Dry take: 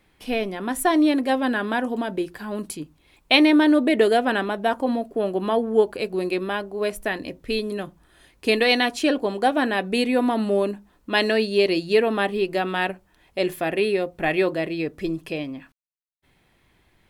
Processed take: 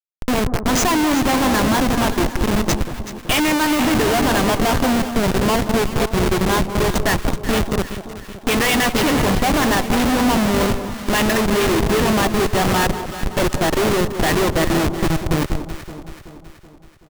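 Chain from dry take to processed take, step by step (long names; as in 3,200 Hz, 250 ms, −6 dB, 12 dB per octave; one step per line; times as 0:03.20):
hearing-aid frequency compression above 2,500 Hz 1.5 to 1
high-shelf EQ 2,800 Hz +9 dB
comb filter 1 ms, depth 39%
in parallel at +2.5 dB: downward compressor 8 to 1, threshold −32 dBFS, peak gain reduction 21 dB
on the sum: single-tap delay 470 ms −11.5 dB
dead-zone distortion −42 dBFS
dynamic equaliser 1,200 Hz, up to +7 dB, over −33 dBFS, Q 1.3
comparator with hysteresis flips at −20.5 dBFS
on a send: delay that swaps between a low-pass and a high-pass 189 ms, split 1,100 Hz, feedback 72%, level −9 dB
on the sum: level +3 dB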